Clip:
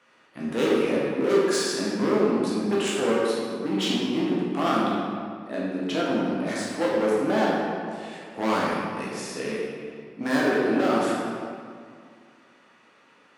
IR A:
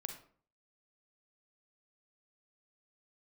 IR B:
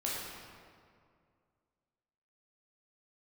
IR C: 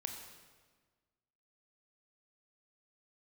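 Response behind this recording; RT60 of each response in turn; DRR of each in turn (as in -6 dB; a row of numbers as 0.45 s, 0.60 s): B; 0.50 s, 2.2 s, 1.5 s; 5.5 dB, -6.0 dB, 3.5 dB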